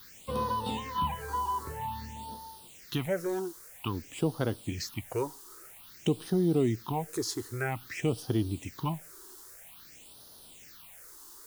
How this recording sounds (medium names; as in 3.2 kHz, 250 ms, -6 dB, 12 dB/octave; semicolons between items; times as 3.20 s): a quantiser's noise floor 8-bit, dither triangular; phasing stages 6, 0.51 Hz, lowest notch 160–2300 Hz